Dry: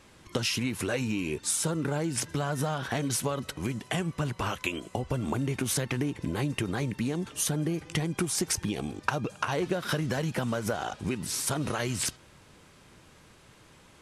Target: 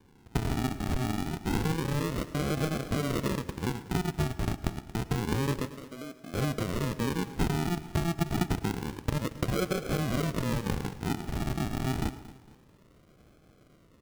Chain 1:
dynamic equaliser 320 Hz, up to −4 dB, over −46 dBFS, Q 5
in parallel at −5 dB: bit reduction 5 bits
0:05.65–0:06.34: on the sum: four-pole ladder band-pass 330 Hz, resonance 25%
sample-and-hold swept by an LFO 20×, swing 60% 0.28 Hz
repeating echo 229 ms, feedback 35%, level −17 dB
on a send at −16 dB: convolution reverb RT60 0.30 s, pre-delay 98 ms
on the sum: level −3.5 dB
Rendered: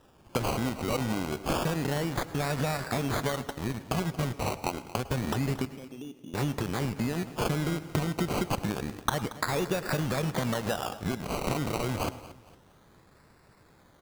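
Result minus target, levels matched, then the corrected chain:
sample-and-hold swept by an LFO: distortion −10 dB
dynamic equaliser 320 Hz, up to −4 dB, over −46 dBFS, Q 5
in parallel at −5 dB: bit reduction 5 bits
0:05.65–0:06.34: on the sum: four-pole ladder band-pass 330 Hz, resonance 25%
sample-and-hold swept by an LFO 67×, swing 60% 0.28 Hz
repeating echo 229 ms, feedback 35%, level −17 dB
on a send at −16 dB: convolution reverb RT60 0.30 s, pre-delay 98 ms
on the sum: level −3.5 dB

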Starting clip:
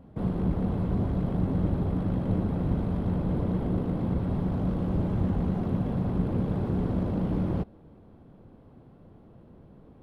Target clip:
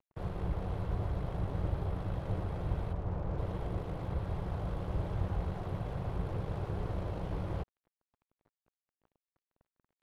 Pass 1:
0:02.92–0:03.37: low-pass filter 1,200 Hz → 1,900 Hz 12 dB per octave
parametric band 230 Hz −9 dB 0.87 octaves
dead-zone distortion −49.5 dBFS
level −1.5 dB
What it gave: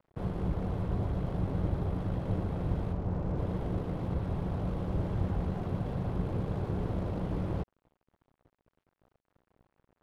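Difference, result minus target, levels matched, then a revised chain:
250 Hz band +3.5 dB
0:02.92–0:03.37: low-pass filter 1,200 Hz → 1,900 Hz 12 dB per octave
parametric band 230 Hz −21 dB 0.87 octaves
dead-zone distortion −49.5 dBFS
level −1.5 dB

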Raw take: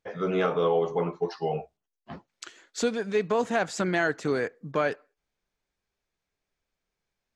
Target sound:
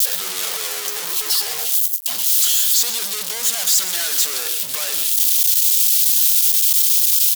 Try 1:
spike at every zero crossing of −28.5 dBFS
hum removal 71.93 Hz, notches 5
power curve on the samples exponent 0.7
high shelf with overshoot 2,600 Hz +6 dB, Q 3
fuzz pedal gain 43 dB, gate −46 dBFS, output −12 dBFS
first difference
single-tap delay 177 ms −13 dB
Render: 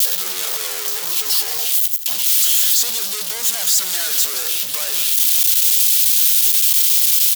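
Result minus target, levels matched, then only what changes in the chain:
echo 51 ms late; spike at every zero crossing: distortion +10 dB
change: spike at every zero crossing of −38.5 dBFS
change: single-tap delay 126 ms −13 dB

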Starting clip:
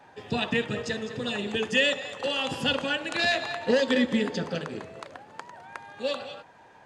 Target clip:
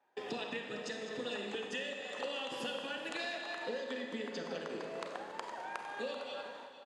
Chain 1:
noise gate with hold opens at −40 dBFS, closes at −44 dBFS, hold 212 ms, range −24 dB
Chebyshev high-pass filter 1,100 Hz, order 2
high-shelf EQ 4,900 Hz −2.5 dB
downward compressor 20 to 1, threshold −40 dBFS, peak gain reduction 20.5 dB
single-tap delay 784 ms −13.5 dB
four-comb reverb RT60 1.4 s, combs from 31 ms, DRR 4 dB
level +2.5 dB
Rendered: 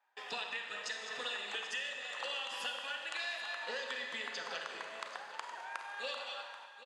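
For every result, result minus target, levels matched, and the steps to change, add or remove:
250 Hz band −16.5 dB; echo 328 ms late
change: Chebyshev high-pass filter 340 Hz, order 2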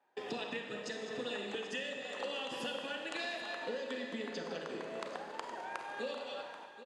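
echo 328 ms late
change: single-tap delay 456 ms −13.5 dB

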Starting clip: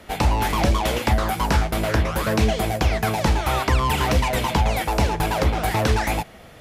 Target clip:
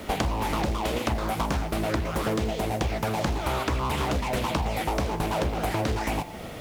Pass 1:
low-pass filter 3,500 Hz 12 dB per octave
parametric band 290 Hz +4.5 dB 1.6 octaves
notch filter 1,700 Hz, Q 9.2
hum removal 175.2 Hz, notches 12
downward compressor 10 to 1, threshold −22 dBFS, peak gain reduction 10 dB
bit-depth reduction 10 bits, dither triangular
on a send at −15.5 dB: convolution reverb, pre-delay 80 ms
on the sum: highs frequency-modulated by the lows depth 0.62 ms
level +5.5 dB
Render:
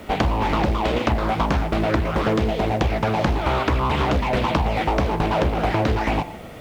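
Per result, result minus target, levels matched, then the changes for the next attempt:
downward compressor: peak gain reduction −6.5 dB; 4,000 Hz band −3.0 dB
change: downward compressor 10 to 1, threshold −29 dBFS, peak gain reduction 16.5 dB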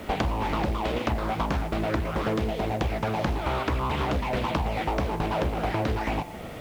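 4,000 Hz band −2.5 dB
remove: low-pass filter 3,500 Hz 12 dB per octave

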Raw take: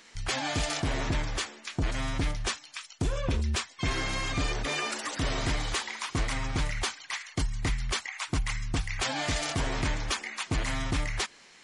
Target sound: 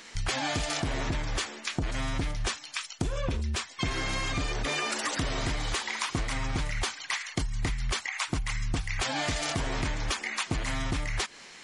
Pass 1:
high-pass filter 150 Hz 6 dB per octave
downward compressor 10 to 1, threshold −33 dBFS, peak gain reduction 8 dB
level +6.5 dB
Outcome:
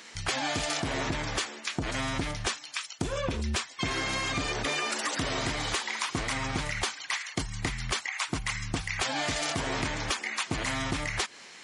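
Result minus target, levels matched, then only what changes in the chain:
125 Hz band −3.0 dB
remove: high-pass filter 150 Hz 6 dB per octave

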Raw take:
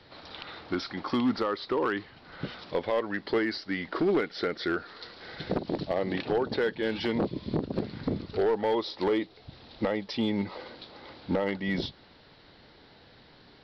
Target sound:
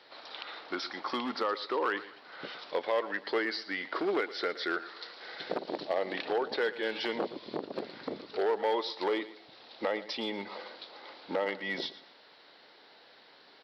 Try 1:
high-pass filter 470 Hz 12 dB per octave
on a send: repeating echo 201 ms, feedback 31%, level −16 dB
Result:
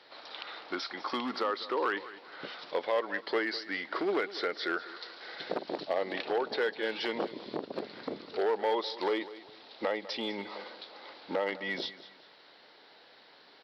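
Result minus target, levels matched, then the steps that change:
echo 84 ms late
change: repeating echo 117 ms, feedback 31%, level −16 dB

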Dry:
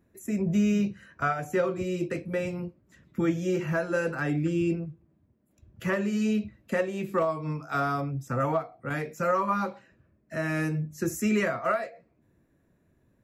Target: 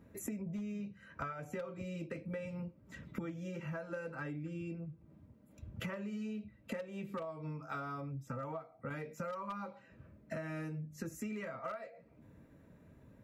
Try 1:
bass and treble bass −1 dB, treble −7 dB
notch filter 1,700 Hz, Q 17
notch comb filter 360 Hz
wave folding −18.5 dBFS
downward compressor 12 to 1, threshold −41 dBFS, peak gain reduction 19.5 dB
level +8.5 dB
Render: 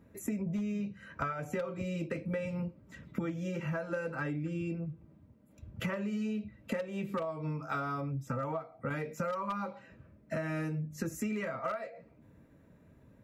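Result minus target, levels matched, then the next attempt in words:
downward compressor: peak gain reduction −6.5 dB
bass and treble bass −1 dB, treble −7 dB
notch filter 1,700 Hz, Q 17
notch comb filter 360 Hz
wave folding −18.5 dBFS
downward compressor 12 to 1, threshold −48 dBFS, peak gain reduction 26 dB
level +8.5 dB

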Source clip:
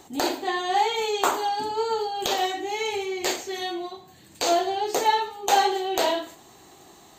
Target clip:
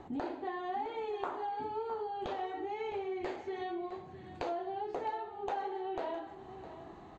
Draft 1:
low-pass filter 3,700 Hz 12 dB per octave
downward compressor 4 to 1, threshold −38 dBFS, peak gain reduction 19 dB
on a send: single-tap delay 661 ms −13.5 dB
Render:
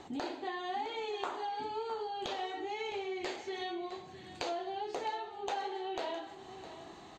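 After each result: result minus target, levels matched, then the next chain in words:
4,000 Hz band +10.5 dB; 125 Hz band −4.0 dB
low-pass filter 1,600 Hz 12 dB per octave
downward compressor 4 to 1, threshold −38 dBFS, peak gain reduction 18.5 dB
on a send: single-tap delay 661 ms −13.5 dB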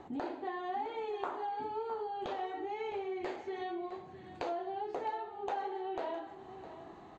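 125 Hz band −3.5 dB
low-pass filter 1,600 Hz 12 dB per octave
downward compressor 4 to 1, threshold −38 dBFS, peak gain reduction 18.5 dB
low-shelf EQ 120 Hz +8 dB
on a send: single-tap delay 661 ms −13.5 dB

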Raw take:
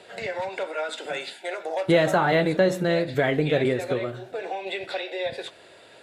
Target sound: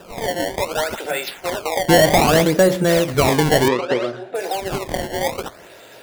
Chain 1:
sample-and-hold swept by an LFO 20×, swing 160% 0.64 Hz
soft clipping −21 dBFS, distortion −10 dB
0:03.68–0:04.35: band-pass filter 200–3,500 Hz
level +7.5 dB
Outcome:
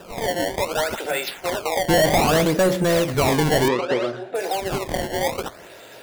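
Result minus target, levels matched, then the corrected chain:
soft clipping: distortion +12 dB
sample-and-hold swept by an LFO 20×, swing 160% 0.64 Hz
soft clipping −11.5 dBFS, distortion −22 dB
0:03.68–0:04.35: band-pass filter 200–3,500 Hz
level +7.5 dB

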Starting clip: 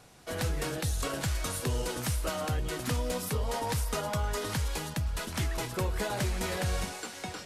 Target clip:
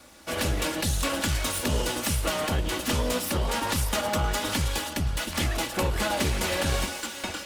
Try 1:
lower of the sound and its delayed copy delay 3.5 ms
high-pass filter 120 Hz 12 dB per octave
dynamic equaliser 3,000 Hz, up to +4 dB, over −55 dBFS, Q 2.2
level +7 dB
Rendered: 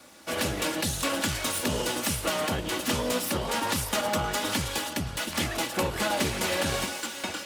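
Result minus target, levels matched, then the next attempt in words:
125 Hz band −4.5 dB
lower of the sound and its delayed copy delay 3.5 ms
high-pass filter 42 Hz 12 dB per octave
dynamic equaliser 3,000 Hz, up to +4 dB, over −55 dBFS, Q 2.2
level +7 dB

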